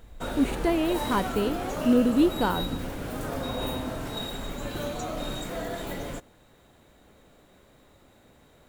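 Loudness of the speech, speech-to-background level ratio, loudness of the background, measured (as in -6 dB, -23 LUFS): -26.0 LUFS, 7.0 dB, -33.0 LUFS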